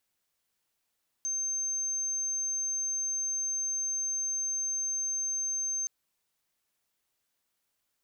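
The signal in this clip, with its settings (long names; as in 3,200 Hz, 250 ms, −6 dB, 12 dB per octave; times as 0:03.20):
tone sine 6,300 Hz −29 dBFS 4.62 s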